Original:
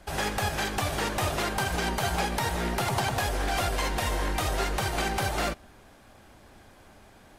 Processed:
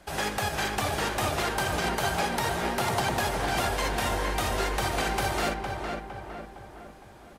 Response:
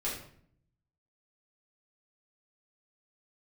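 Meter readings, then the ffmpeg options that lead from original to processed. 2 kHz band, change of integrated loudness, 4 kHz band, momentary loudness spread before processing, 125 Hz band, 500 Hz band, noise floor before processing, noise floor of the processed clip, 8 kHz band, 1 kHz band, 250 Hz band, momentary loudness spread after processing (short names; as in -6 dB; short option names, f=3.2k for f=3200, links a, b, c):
+1.0 dB, +0.5 dB, +0.5 dB, 1 LU, -2.0 dB, +1.5 dB, -54 dBFS, -49 dBFS, 0.0 dB, +1.5 dB, +0.5 dB, 13 LU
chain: -filter_complex "[0:a]lowshelf=f=80:g=-8.5,asplit=2[a][b];[b]adelay=459,lowpass=f=2.2k:p=1,volume=-4dB,asplit=2[c][d];[d]adelay=459,lowpass=f=2.2k:p=1,volume=0.51,asplit=2[e][f];[f]adelay=459,lowpass=f=2.2k:p=1,volume=0.51,asplit=2[g][h];[h]adelay=459,lowpass=f=2.2k:p=1,volume=0.51,asplit=2[i][j];[j]adelay=459,lowpass=f=2.2k:p=1,volume=0.51,asplit=2[k][l];[l]adelay=459,lowpass=f=2.2k:p=1,volume=0.51,asplit=2[m][n];[n]adelay=459,lowpass=f=2.2k:p=1,volume=0.51[o];[c][e][g][i][k][m][o]amix=inputs=7:normalize=0[p];[a][p]amix=inputs=2:normalize=0"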